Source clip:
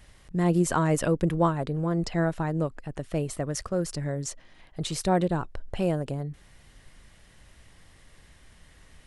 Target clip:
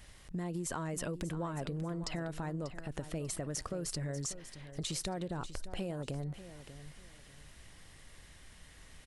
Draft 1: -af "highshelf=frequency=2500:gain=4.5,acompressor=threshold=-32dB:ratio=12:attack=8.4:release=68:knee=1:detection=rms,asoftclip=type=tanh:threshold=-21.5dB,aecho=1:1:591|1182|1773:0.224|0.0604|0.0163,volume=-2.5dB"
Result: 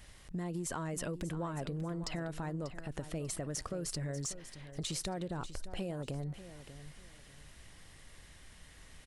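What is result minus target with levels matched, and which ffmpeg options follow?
soft clipping: distortion +21 dB
-af "highshelf=frequency=2500:gain=4.5,acompressor=threshold=-32dB:ratio=12:attack=8.4:release=68:knee=1:detection=rms,asoftclip=type=tanh:threshold=-10dB,aecho=1:1:591|1182|1773:0.224|0.0604|0.0163,volume=-2.5dB"

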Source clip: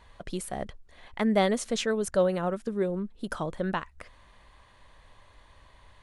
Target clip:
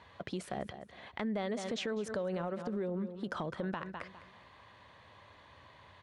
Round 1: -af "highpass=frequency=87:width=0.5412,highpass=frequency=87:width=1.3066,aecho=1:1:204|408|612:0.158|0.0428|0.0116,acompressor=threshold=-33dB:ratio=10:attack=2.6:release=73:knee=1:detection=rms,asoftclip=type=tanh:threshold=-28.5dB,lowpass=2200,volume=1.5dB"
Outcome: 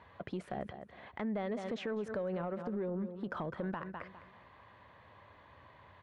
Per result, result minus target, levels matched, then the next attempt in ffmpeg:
soft clipping: distortion +20 dB; 4,000 Hz band −7.0 dB
-af "highpass=frequency=87:width=0.5412,highpass=frequency=87:width=1.3066,aecho=1:1:204|408|612:0.158|0.0428|0.0116,acompressor=threshold=-33dB:ratio=10:attack=2.6:release=73:knee=1:detection=rms,asoftclip=type=tanh:threshold=-17.5dB,lowpass=2200,volume=1.5dB"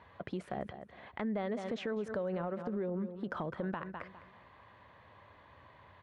4,000 Hz band −7.0 dB
-af "highpass=frequency=87:width=0.5412,highpass=frequency=87:width=1.3066,aecho=1:1:204|408|612:0.158|0.0428|0.0116,acompressor=threshold=-33dB:ratio=10:attack=2.6:release=73:knee=1:detection=rms,asoftclip=type=tanh:threshold=-17.5dB,lowpass=4700,volume=1.5dB"

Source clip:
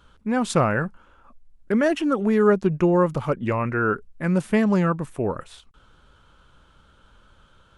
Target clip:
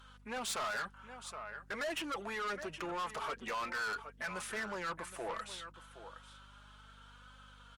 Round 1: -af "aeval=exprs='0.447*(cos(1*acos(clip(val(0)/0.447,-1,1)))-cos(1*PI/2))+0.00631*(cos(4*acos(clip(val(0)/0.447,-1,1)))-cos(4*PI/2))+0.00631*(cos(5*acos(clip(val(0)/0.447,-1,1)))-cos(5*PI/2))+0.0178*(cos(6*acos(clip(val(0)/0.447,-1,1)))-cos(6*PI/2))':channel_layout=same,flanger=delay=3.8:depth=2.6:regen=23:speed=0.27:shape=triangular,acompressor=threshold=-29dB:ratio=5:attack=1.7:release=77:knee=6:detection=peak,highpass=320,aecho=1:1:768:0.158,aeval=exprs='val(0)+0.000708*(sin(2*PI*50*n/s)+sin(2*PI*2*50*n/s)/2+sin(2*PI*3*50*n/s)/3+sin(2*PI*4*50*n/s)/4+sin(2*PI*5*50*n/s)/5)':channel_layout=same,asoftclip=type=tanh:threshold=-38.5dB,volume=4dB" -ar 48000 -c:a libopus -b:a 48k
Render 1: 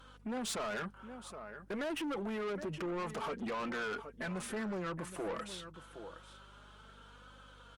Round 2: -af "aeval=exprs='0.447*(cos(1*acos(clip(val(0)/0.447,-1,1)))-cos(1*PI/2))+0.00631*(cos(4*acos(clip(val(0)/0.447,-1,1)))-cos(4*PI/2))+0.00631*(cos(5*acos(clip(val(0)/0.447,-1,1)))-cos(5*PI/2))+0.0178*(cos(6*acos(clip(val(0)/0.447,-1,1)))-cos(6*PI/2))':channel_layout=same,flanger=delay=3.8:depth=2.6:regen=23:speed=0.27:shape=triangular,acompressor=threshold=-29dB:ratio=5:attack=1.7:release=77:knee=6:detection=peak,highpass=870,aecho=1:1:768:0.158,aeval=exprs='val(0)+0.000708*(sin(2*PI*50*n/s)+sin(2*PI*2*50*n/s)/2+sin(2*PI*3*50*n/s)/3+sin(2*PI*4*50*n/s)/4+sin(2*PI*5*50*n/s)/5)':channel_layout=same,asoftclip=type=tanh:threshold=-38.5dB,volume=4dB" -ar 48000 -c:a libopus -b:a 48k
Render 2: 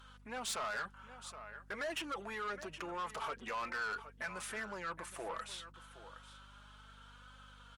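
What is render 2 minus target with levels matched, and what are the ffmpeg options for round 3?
downward compressor: peak gain reduction +5.5 dB
-af "aeval=exprs='0.447*(cos(1*acos(clip(val(0)/0.447,-1,1)))-cos(1*PI/2))+0.00631*(cos(4*acos(clip(val(0)/0.447,-1,1)))-cos(4*PI/2))+0.00631*(cos(5*acos(clip(val(0)/0.447,-1,1)))-cos(5*PI/2))+0.0178*(cos(6*acos(clip(val(0)/0.447,-1,1)))-cos(6*PI/2))':channel_layout=same,flanger=delay=3.8:depth=2.6:regen=23:speed=0.27:shape=triangular,acompressor=threshold=-22dB:ratio=5:attack=1.7:release=77:knee=6:detection=peak,highpass=870,aecho=1:1:768:0.158,aeval=exprs='val(0)+0.000708*(sin(2*PI*50*n/s)+sin(2*PI*2*50*n/s)/2+sin(2*PI*3*50*n/s)/3+sin(2*PI*4*50*n/s)/4+sin(2*PI*5*50*n/s)/5)':channel_layout=same,asoftclip=type=tanh:threshold=-38.5dB,volume=4dB" -ar 48000 -c:a libopus -b:a 48k

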